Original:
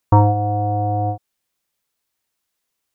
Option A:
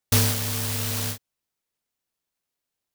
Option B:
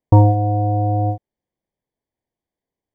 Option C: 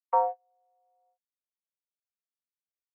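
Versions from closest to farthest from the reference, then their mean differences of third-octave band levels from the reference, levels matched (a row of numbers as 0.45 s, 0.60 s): B, C, A; 2.0 dB, 10.0 dB, 24.0 dB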